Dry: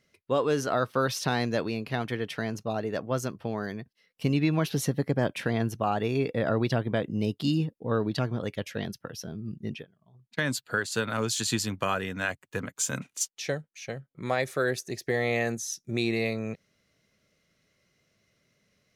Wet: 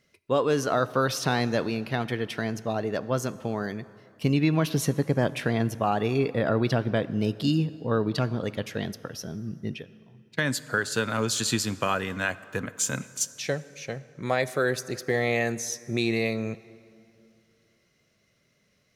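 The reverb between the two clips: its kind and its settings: plate-style reverb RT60 2.6 s, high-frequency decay 0.65×, DRR 16 dB; gain +2 dB

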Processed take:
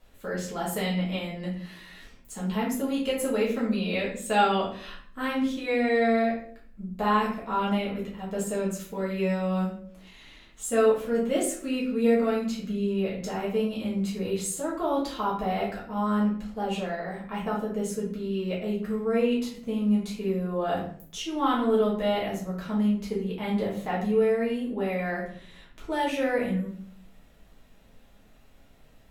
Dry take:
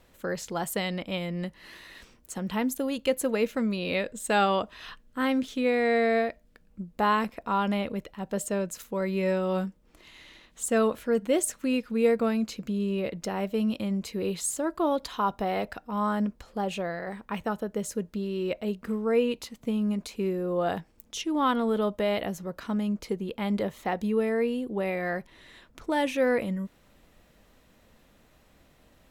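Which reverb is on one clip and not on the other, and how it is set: shoebox room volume 68 m³, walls mixed, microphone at 1.5 m; gain -7 dB

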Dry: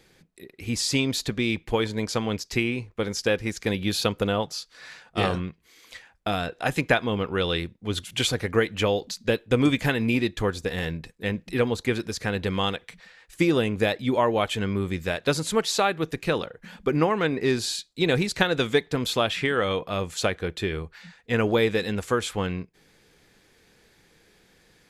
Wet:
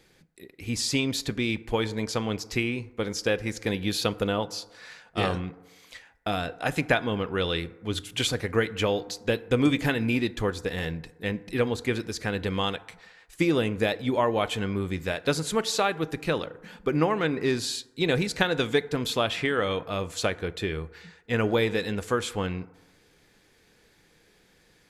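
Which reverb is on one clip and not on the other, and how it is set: FDN reverb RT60 1.2 s, low-frequency decay 0.8×, high-frequency decay 0.35×, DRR 16 dB; gain -2 dB

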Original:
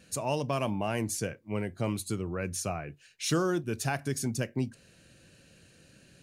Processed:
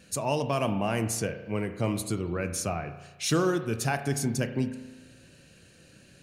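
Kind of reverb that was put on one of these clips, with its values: spring tank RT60 1.2 s, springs 35 ms, chirp 60 ms, DRR 9 dB; gain +2.5 dB

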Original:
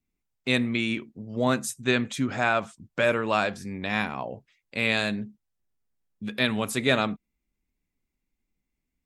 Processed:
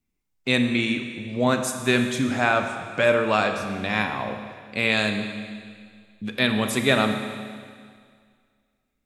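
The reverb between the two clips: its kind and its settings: Schroeder reverb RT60 2 s, combs from 29 ms, DRR 6 dB; gain +2.5 dB

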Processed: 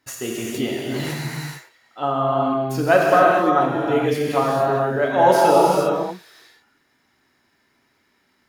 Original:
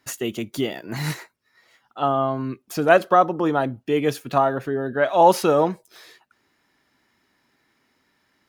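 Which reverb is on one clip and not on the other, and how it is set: non-linear reverb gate 0.48 s flat, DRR -4 dB; gain -3 dB

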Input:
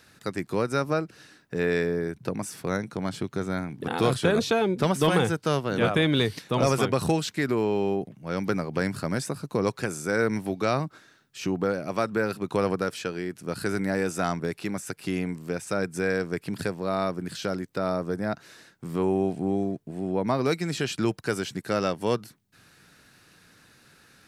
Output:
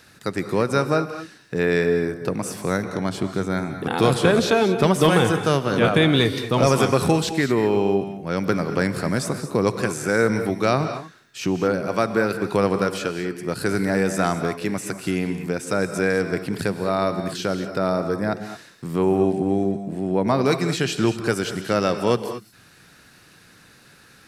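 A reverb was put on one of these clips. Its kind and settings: non-linear reverb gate 0.25 s rising, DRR 8.5 dB; gain +5 dB

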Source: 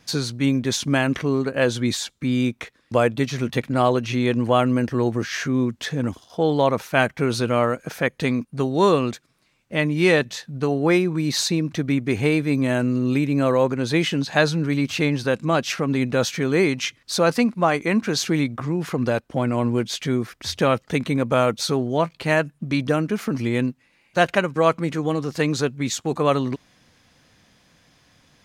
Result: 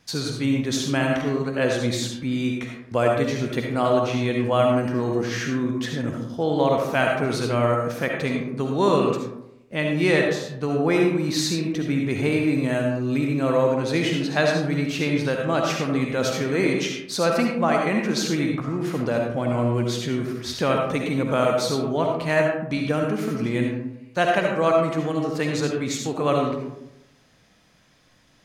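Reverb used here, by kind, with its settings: digital reverb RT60 0.85 s, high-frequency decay 0.4×, pre-delay 30 ms, DRR 0.5 dB; gain -4 dB

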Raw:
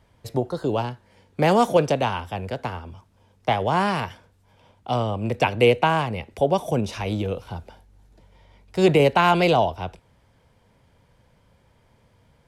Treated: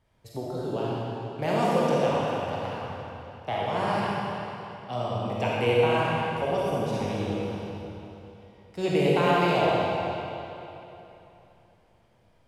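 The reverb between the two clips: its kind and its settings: digital reverb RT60 3.1 s, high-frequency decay 0.9×, pre-delay 5 ms, DRR -6.5 dB; gain -11.5 dB

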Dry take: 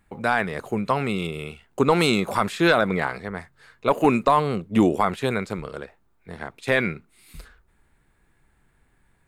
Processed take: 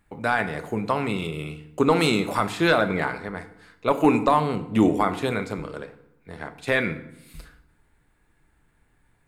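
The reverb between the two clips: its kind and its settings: FDN reverb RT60 0.81 s, low-frequency decay 1.3×, high-frequency decay 0.75×, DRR 8.5 dB; gain -1.5 dB

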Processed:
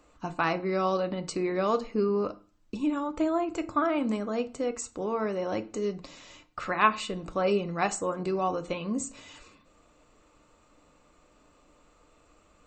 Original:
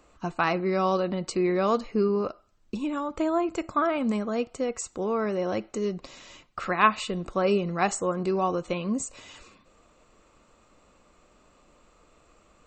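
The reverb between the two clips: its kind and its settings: FDN reverb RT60 0.32 s, low-frequency decay 1.45×, high-frequency decay 0.75×, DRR 9 dB; gain -2.5 dB

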